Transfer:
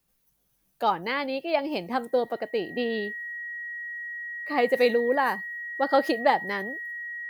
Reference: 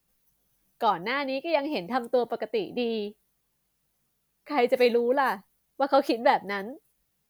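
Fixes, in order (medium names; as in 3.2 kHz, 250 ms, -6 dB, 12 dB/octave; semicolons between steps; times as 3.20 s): band-stop 1.9 kHz, Q 30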